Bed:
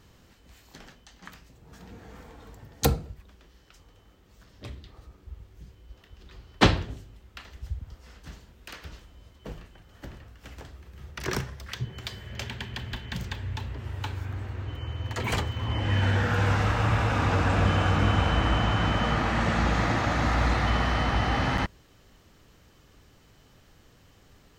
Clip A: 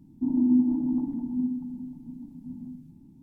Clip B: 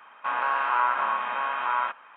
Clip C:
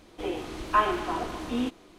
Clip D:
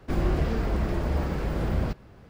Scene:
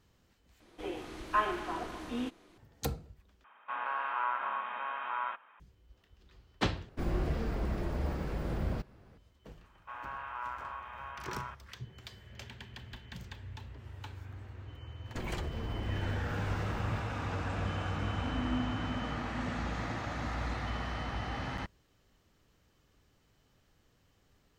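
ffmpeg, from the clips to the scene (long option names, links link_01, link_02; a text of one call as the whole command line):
ffmpeg -i bed.wav -i cue0.wav -i cue1.wav -i cue2.wav -i cue3.wav -filter_complex "[2:a]asplit=2[link_01][link_02];[4:a]asplit=2[link_03][link_04];[0:a]volume=-12dB[link_05];[3:a]equalizer=frequency=1700:width=1.8:gain=3.5[link_06];[link_04]acompressor=threshold=-33dB:ratio=6:attack=3.2:release=140:knee=1:detection=peak[link_07];[link_05]asplit=4[link_08][link_09][link_10][link_11];[link_08]atrim=end=0.604[link_12];[link_06]atrim=end=1.98,asetpts=PTS-STARTPTS,volume=-7.5dB[link_13];[link_09]atrim=start=2.576:end=3.444[link_14];[link_01]atrim=end=2.16,asetpts=PTS-STARTPTS,volume=-9.5dB[link_15];[link_10]atrim=start=5.596:end=6.894[link_16];[link_03]atrim=end=2.29,asetpts=PTS-STARTPTS,volume=-7.5dB[link_17];[link_11]atrim=start=9.176[link_18];[link_02]atrim=end=2.16,asetpts=PTS-STARTPTS,volume=-16.5dB,afade=type=in:duration=0.004:curve=hsin,afade=type=out:start_time=2.156:duration=0.004:curve=hsin,adelay=9630[link_19];[link_07]atrim=end=2.29,asetpts=PTS-STARTPTS,volume=-3dB,afade=type=in:duration=0.004:curve=hsin,afade=type=out:start_time=2.286:duration=0.004:curve=hsin,adelay=15070[link_20];[1:a]atrim=end=3.22,asetpts=PTS-STARTPTS,volume=-14.5dB,afade=type=in:duration=0.004:curve=hsin,afade=type=out:start_time=3.216:duration=0.004:curve=hsin,adelay=18010[link_21];[link_12][link_13]acrossfade=duration=0.004:curve1=hsin:curve2=hsin[link_22];[link_22][link_14]acrossfade=duration=0.004:curve1=hsin:curve2=hsin[link_23];[link_23][link_15]acrossfade=duration=0.004:curve1=hsin:curve2=hsin[link_24];[link_24][link_16]acrossfade=duration=0.004:curve1=hsin:curve2=hsin[link_25];[link_25][link_17]acrossfade=duration=0.004:curve1=hsin:curve2=hsin[link_26];[link_26][link_18]acrossfade=duration=0.004:curve1=hsin:curve2=hsin[link_27];[link_27][link_19][link_20][link_21]amix=inputs=4:normalize=0" out.wav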